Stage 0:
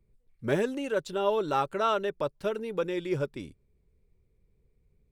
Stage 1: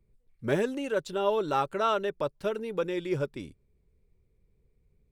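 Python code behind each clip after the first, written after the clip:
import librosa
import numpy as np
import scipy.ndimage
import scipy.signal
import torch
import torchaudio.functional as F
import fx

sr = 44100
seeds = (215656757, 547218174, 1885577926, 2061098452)

y = x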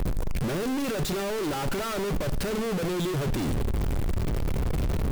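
y = np.sign(x) * np.sqrt(np.mean(np.square(x)))
y = fx.low_shelf(y, sr, hz=380.0, db=7.5)
y = fx.echo_feedback(y, sr, ms=70, feedback_pct=44, wet_db=-17)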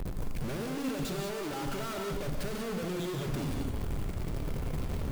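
y = fx.rev_gated(x, sr, seeds[0], gate_ms=210, shape='rising', drr_db=2.0)
y = y * 10.0 ** (-8.5 / 20.0)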